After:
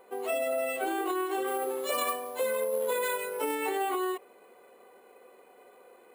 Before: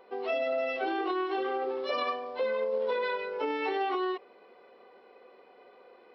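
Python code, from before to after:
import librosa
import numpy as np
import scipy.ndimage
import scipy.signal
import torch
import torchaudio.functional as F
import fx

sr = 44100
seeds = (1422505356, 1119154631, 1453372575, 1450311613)

y = np.repeat(x[::4], 4)[:len(x)]
y = fx.high_shelf(y, sr, hz=4100.0, db=6.5, at=(1.47, 3.55))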